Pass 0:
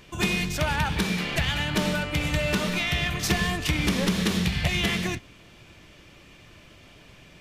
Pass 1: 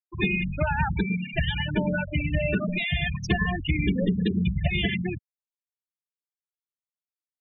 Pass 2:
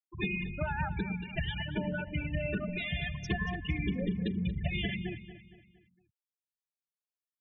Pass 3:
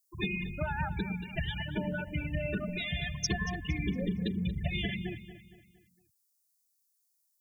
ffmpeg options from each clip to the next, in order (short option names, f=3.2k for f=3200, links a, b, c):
-af "afftfilt=real='re*gte(hypot(re,im),0.126)':imag='im*gte(hypot(re,im),0.126)':win_size=1024:overlap=0.75,volume=1.5dB"
-filter_complex "[0:a]asplit=2[a][b];[b]adelay=231,lowpass=f=4.9k:p=1,volume=-13dB,asplit=2[c][d];[d]adelay=231,lowpass=f=4.9k:p=1,volume=0.45,asplit=2[e][f];[f]adelay=231,lowpass=f=4.9k:p=1,volume=0.45,asplit=2[g][h];[h]adelay=231,lowpass=f=4.9k:p=1,volume=0.45[i];[a][c][e][g][i]amix=inputs=5:normalize=0,volume=-8.5dB"
-af "aexciter=amount=4.6:drive=8.8:freq=4.4k"